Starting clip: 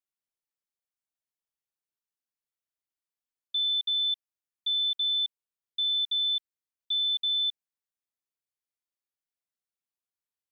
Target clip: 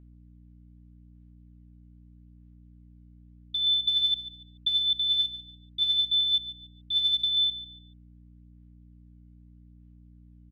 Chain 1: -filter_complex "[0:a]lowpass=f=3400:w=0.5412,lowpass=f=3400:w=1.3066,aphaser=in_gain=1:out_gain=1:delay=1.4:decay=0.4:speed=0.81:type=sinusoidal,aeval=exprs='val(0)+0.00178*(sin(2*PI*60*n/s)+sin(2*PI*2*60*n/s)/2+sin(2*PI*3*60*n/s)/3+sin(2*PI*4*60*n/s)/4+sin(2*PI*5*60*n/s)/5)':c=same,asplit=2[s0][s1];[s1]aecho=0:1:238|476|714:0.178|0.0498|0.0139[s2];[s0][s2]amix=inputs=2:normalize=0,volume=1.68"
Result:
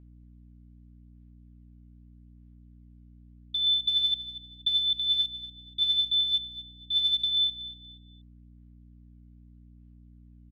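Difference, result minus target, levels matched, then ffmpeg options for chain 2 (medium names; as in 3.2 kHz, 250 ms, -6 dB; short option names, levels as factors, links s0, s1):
echo 94 ms late
-filter_complex "[0:a]lowpass=f=3400:w=0.5412,lowpass=f=3400:w=1.3066,aphaser=in_gain=1:out_gain=1:delay=1.4:decay=0.4:speed=0.81:type=sinusoidal,aeval=exprs='val(0)+0.00178*(sin(2*PI*60*n/s)+sin(2*PI*2*60*n/s)/2+sin(2*PI*3*60*n/s)/3+sin(2*PI*4*60*n/s)/4+sin(2*PI*5*60*n/s)/5)':c=same,asplit=2[s0][s1];[s1]aecho=0:1:144|288|432:0.178|0.0498|0.0139[s2];[s0][s2]amix=inputs=2:normalize=0,volume=1.68"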